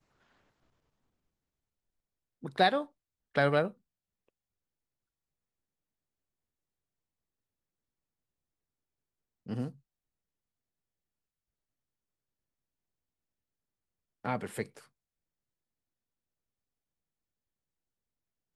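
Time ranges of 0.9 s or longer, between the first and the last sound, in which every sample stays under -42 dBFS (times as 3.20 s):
3.71–9.47 s
9.70–14.25 s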